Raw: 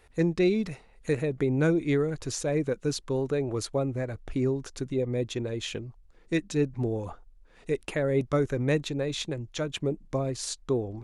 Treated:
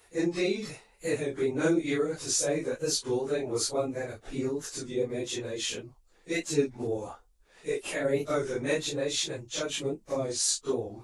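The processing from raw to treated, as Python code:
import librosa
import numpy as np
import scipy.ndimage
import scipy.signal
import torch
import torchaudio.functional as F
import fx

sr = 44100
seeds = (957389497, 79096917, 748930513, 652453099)

y = fx.phase_scramble(x, sr, seeds[0], window_ms=100)
y = fx.bass_treble(y, sr, bass_db=-10, treble_db=9)
y = fx.record_warp(y, sr, rpm=33.33, depth_cents=100.0)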